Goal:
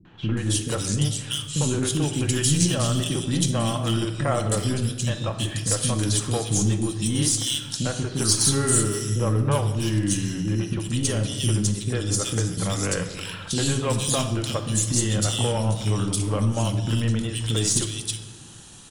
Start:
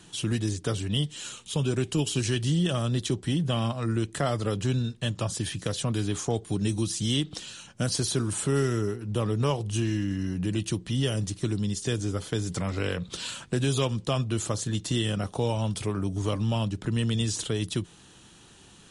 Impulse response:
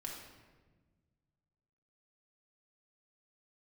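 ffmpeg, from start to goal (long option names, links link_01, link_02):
-filter_complex "[0:a]asoftclip=type=hard:threshold=-19dB,acrossover=split=330|2500[link_01][link_02][link_03];[link_02]adelay=50[link_04];[link_03]adelay=370[link_05];[link_01][link_04][link_05]amix=inputs=3:normalize=0,crystalizer=i=1.5:c=0,aeval=exprs='0.335*(cos(1*acos(clip(val(0)/0.335,-1,1)))-cos(1*PI/2))+0.0133*(cos(4*acos(clip(val(0)/0.335,-1,1)))-cos(4*PI/2))':channel_layout=same,asplit=2[link_06][link_07];[1:a]atrim=start_sample=2205[link_08];[link_07][link_08]afir=irnorm=-1:irlink=0,volume=0.5dB[link_09];[link_06][link_09]amix=inputs=2:normalize=0"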